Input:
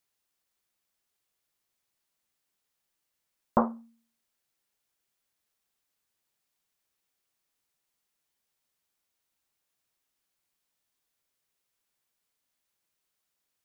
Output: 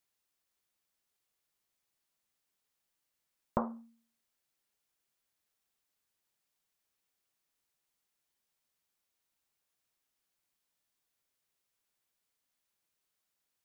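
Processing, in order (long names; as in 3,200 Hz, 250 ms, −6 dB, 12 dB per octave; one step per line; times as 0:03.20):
downward compressor, threshold −25 dBFS, peak gain reduction 7.5 dB
level −2.5 dB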